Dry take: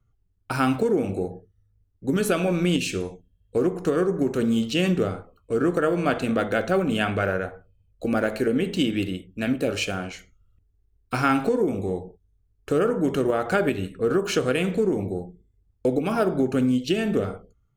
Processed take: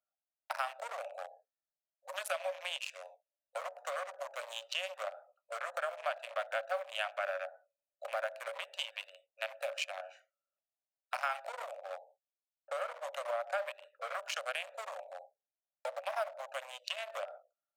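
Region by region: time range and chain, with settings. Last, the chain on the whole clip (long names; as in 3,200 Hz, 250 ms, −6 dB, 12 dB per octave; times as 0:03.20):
0:11.78–0:14.13: low-pass that shuts in the quiet parts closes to 450 Hz, open at −21.5 dBFS + tilt shelving filter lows +3 dB, about 630 Hz
whole clip: adaptive Wiener filter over 41 samples; Chebyshev high-pass filter 560 Hz, order 8; downward compressor 2.5 to 1, threshold −40 dBFS; level +2.5 dB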